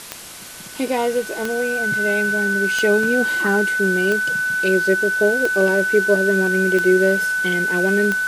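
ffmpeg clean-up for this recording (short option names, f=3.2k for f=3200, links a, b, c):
-af "adeclick=t=4,bandreject=f=1.5k:w=30,afwtdn=0.018"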